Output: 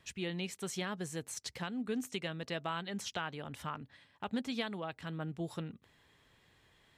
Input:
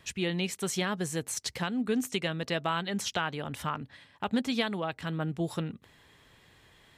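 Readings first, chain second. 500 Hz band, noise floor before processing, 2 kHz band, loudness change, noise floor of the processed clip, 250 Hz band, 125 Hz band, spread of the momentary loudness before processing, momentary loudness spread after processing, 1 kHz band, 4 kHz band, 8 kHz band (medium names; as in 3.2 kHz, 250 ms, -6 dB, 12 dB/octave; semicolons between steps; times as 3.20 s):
-7.5 dB, -61 dBFS, -7.5 dB, -7.5 dB, -69 dBFS, -7.5 dB, -7.5 dB, 6 LU, 6 LU, -7.5 dB, -7.5 dB, -8.5 dB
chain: peaking EQ 12 kHz -2.5 dB 0.77 oct; trim -7.5 dB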